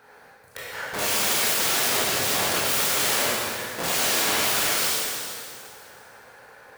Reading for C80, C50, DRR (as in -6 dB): -1.0 dB, -3.0 dB, -7.0 dB